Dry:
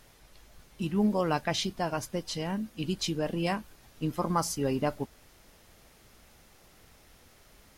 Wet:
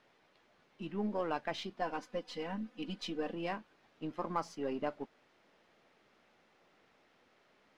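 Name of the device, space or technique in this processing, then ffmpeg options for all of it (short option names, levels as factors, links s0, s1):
crystal radio: -filter_complex "[0:a]highpass=240,lowpass=3000,aeval=exprs='if(lt(val(0),0),0.708*val(0),val(0))':c=same,asettb=1/sr,asplit=3[s0][s1][s2];[s0]atrim=end=1.814[s3];[s1]atrim=start=1.81:end=3.33,asetpts=PTS-STARTPTS,afade=t=in:d=0.004:c=qsin,afade=t=out:st=1.516:d=0.004:c=qsin,aecho=1:1:4:0.83,atrim=end_sample=67032[s4];[s2]atrim=start=3.326[s5];[s3][s4]acrossfade=d=0.004:c1=hsin:c2=qsin[s6];[s6][s5]acrossfade=d=0.004:c1=qsin:c2=hsin,volume=0.562"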